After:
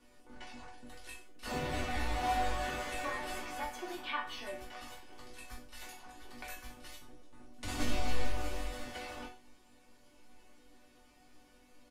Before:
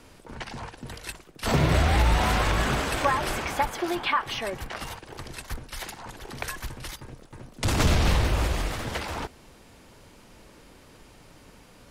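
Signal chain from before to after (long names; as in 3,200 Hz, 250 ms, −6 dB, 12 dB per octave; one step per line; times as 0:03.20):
resonators tuned to a chord B3 minor, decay 0.27 s
reverse bouncing-ball delay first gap 20 ms, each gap 1.1×, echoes 5
level +3.5 dB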